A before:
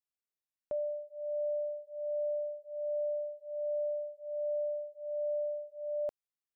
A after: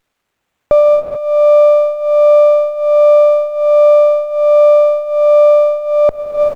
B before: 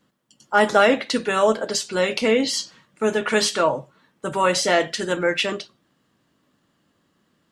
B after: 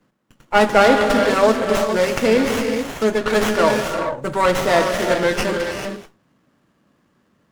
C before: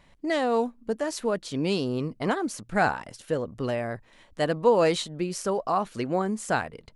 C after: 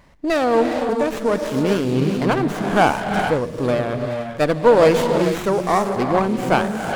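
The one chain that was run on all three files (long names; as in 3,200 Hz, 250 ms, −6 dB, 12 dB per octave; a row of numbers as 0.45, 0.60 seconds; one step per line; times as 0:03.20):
reverb whose tail is shaped and stops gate 460 ms rising, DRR 4 dB
windowed peak hold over 9 samples
normalise the peak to −1.5 dBFS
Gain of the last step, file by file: +26.5, +3.5, +7.5 decibels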